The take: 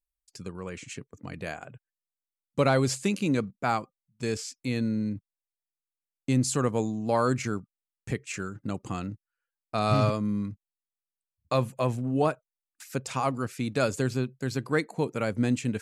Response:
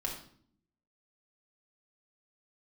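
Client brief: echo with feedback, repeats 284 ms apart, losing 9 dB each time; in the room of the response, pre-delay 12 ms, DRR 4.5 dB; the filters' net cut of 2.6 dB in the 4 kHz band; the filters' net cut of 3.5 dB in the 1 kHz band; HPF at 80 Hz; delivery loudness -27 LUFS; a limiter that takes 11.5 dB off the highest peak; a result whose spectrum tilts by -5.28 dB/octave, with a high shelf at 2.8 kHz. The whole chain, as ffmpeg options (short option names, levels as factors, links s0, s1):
-filter_complex "[0:a]highpass=80,equalizer=f=1000:t=o:g=-5,highshelf=f=2800:g=3,equalizer=f=4000:t=o:g=-5.5,alimiter=limit=0.0668:level=0:latency=1,aecho=1:1:284|568|852|1136:0.355|0.124|0.0435|0.0152,asplit=2[s0][s1];[1:a]atrim=start_sample=2205,adelay=12[s2];[s1][s2]afir=irnorm=-1:irlink=0,volume=0.447[s3];[s0][s3]amix=inputs=2:normalize=0,volume=2.24"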